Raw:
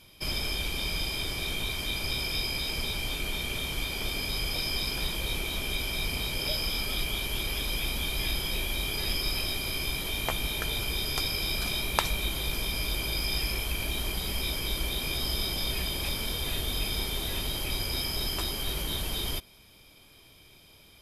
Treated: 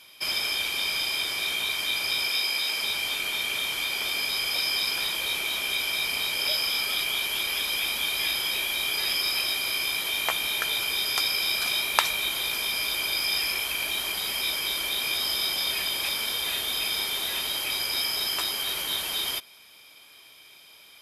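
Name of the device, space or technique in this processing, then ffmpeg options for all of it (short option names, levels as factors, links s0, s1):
filter by subtraction: -filter_complex "[0:a]asplit=2[s0][s1];[s1]lowpass=1500,volume=-1[s2];[s0][s2]amix=inputs=2:normalize=0,asettb=1/sr,asplit=3[s3][s4][s5];[s3]atrim=end=2.294[s6];[s4]atrim=start=2.29:end=2.82,asetpts=PTS-STARTPTS,afade=t=in:d=0.004:c=qsin,afade=t=out:st=0.526:d=0.004:c=qsin,highpass=f=250:p=1[s7];[s5]atrim=start=2.816[s8];[s6][s7]acrossfade=d=0.004:c1=hsin:c2=qsin[s9];[s9][s8]acrossfade=d=0.004:c1=qsin:c2=hsin,volume=1.68"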